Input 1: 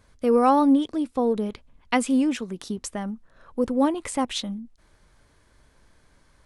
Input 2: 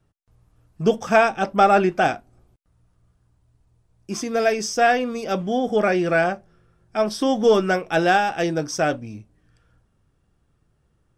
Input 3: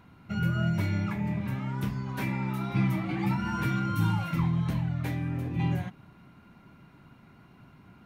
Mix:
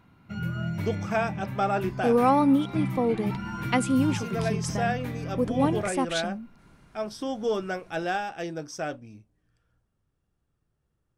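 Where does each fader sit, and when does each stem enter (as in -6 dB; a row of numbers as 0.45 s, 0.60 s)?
-2.5 dB, -11.0 dB, -3.5 dB; 1.80 s, 0.00 s, 0.00 s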